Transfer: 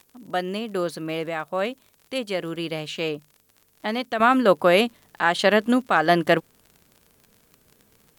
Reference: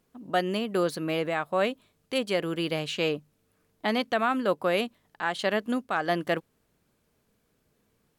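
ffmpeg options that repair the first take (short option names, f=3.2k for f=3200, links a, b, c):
-af "adeclick=t=4,agate=range=-21dB:threshold=-53dB,asetnsamples=n=441:p=0,asendcmd='4.2 volume volume -8.5dB',volume=0dB"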